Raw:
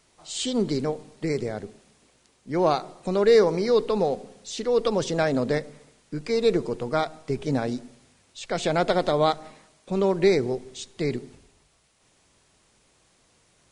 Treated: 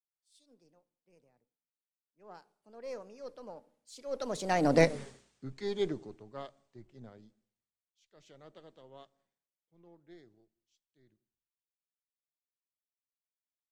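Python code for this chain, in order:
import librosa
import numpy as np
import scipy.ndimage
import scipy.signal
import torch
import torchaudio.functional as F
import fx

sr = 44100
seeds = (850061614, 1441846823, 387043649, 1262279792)

y = np.where(x < 0.0, 10.0 ** (-3.0 / 20.0) * x, x)
y = fx.doppler_pass(y, sr, speed_mps=46, closest_m=6.4, pass_at_s=4.94)
y = fx.band_widen(y, sr, depth_pct=70)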